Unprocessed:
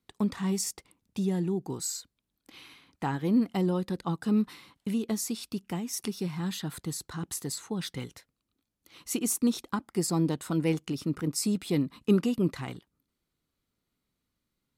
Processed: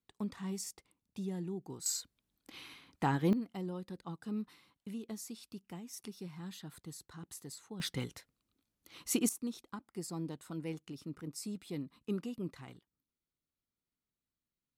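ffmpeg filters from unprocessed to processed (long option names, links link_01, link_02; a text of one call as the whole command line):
ffmpeg -i in.wav -af "asetnsamples=nb_out_samples=441:pad=0,asendcmd='1.86 volume volume -0.5dB;3.33 volume volume -13dB;7.8 volume volume -1dB;9.29 volume volume -13.5dB',volume=-10.5dB" out.wav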